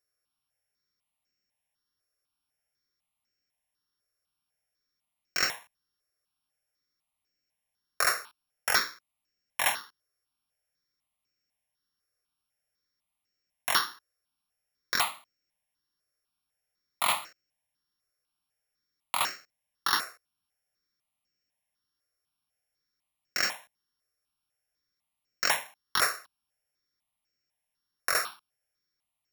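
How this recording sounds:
a buzz of ramps at a fixed pitch in blocks of 8 samples
notches that jump at a steady rate 4 Hz 890–3,500 Hz

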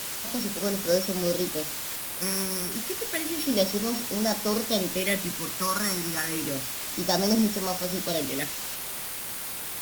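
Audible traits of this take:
a buzz of ramps at a fixed pitch in blocks of 8 samples
phaser sweep stages 4, 0.3 Hz, lowest notch 490–2,900 Hz
a quantiser's noise floor 6 bits, dither triangular
Opus

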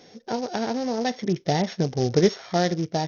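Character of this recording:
a buzz of ramps at a fixed pitch in blocks of 8 samples
sample-and-hold tremolo 3.5 Hz, depth 55%
SBC

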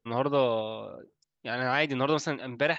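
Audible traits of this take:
background noise floor −85 dBFS
spectral slope −3.5 dB per octave

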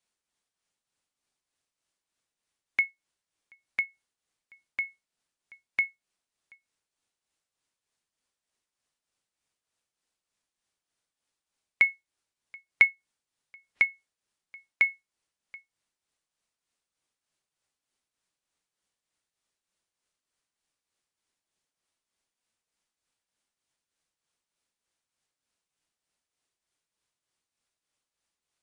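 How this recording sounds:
tremolo triangle 3.3 Hz, depth 60%
AAC

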